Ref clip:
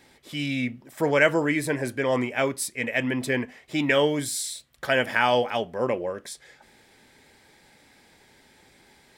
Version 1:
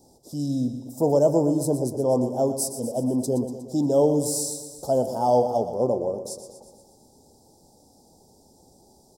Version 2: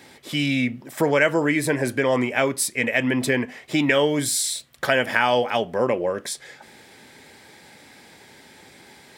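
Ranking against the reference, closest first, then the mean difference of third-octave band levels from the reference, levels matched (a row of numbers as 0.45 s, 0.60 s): 2, 1; 2.0 dB, 9.5 dB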